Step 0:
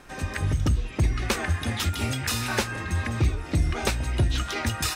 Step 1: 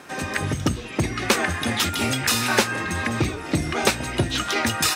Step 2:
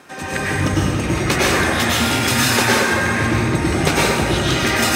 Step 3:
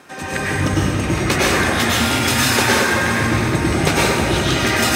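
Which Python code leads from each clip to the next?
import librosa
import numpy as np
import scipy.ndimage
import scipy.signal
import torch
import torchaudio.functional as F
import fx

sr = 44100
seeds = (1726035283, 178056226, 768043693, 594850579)

y1 = scipy.signal.sosfilt(scipy.signal.butter(2, 170.0, 'highpass', fs=sr, output='sos'), x)
y1 = y1 * librosa.db_to_amplitude(7.0)
y2 = fx.rev_plate(y1, sr, seeds[0], rt60_s=2.2, hf_ratio=0.55, predelay_ms=85, drr_db=-7.5)
y2 = y2 * librosa.db_to_amplitude(-1.5)
y3 = fx.echo_feedback(y2, sr, ms=367, feedback_pct=56, wet_db=-12.5)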